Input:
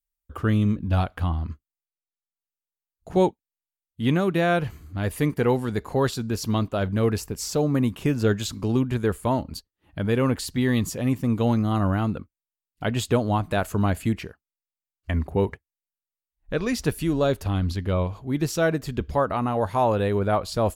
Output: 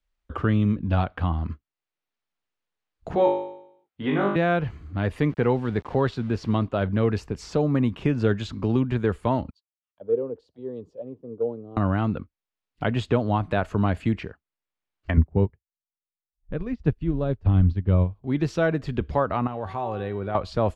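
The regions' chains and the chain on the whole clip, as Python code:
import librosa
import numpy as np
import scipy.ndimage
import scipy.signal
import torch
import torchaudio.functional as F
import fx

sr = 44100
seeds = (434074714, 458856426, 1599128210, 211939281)

y = fx.chain(x, sr, fx.bandpass_q(hz=1000.0, q=0.6),
    fx.room_flutter(wall_m=3.4, rt60_s=0.61), at=(3.15, 4.36))
y = fx.chain(y, sr, fx.high_shelf(hz=6300.0, db=-9.0),
    fx.sample_gate(floor_db=-43.0), at=(5.28, 6.64))
y = fx.chain(y, sr, fx.peak_eq(hz=2000.0, db=-13.0, octaves=0.98),
    fx.auto_wah(base_hz=450.0, top_hz=1300.0, q=6.7, full_db=-22.5, direction='down'),
    fx.band_widen(depth_pct=100), at=(9.5, 11.77))
y = fx.chain(y, sr, fx.riaa(side='playback'),
    fx.upward_expand(threshold_db=-27.0, expansion=2.5), at=(15.17, 18.24))
y = fx.chain(y, sr, fx.comb_fb(f0_hz=380.0, decay_s=0.62, harmonics='all', damping=0.0, mix_pct=80),
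    fx.env_flatten(amount_pct=50), at=(19.47, 20.35))
y = scipy.signal.sosfilt(scipy.signal.butter(2, 3400.0, 'lowpass', fs=sr, output='sos'), y)
y = fx.band_squash(y, sr, depth_pct=40)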